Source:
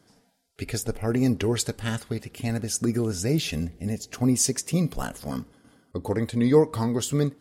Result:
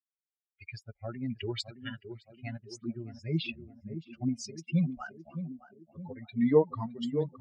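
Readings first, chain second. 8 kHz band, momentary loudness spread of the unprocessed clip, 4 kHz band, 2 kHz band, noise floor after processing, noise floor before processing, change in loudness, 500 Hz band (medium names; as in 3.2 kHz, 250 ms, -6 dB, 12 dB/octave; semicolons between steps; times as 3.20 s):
-22.5 dB, 13 LU, -9.0 dB, -8.0 dB, under -85 dBFS, -65 dBFS, -7.5 dB, -6.5 dB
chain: expander on every frequency bin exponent 3; random-step tremolo; cabinet simulation 130–4900 Hz, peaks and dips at 170 Hz +5 dB, 380 Hz -6 dB, 830 Hz -3 dB, 2.7 kHz +7 dB; on a send: band-passed feedback delay 616 ms, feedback 62%, band-pass 330 Hz, level -8 dB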